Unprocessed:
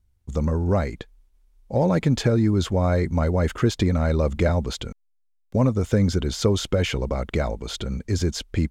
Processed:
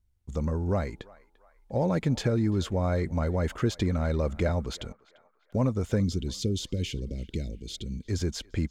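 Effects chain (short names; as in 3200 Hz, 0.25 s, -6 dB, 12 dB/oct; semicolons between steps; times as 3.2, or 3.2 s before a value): 6–8.06 Chebyshev band-stop 310–3300 Hz, order 2; narrowing echo 0.345 s, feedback 50%, band-pass 1300 Hz, level -19 dB; gain -6 dB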